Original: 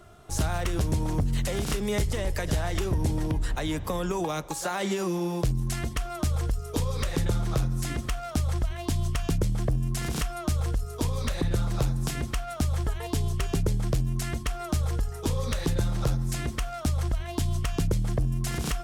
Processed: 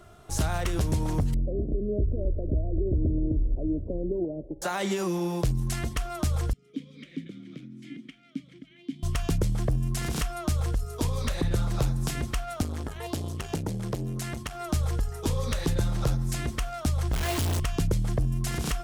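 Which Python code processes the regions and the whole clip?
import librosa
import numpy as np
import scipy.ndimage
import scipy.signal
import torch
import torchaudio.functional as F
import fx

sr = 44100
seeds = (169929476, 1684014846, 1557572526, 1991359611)

y = fx.chain(x, sr, fx.steep_lowpass(hz=570.0, slope=48),
    fx.comb(ms=3.1, depth=0.46), at=(1.34, 4.62))
y = fx.chain(y, sr, fx.vowel_filter(vowel='i'),
    fx.low_shelf_res(hz=110.0, db=-12.5, q=3.0), at=(6.53, 9.03))
y = fx.chain(y, sr, fx.highpass(hz=77.0, slope=12),
    fx.transformer_sat(knee_hz=430.0), at=(12.62, 14.67))
y = fx.chain(y, sr, fx.highpass(hz=41.0, slope=12),
    fx.quant_companded(bits=2), at=(17.13, 17.6))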